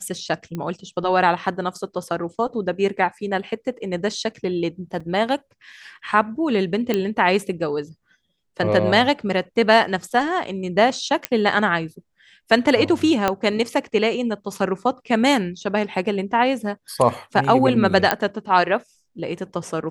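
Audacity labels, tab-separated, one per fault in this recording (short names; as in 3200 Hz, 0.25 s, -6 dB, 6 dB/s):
0.550000	0.550000	pop -17 dBFS
5.000000	5.000000	gap 4.4 ms
6.940000	6.940000	pop -8 dBFS
11.250000	11.250000	pop -4 dBFS
13.280000	13.280000	pop -5 dBFS
18.110000	18.110000	pop -3 dBFS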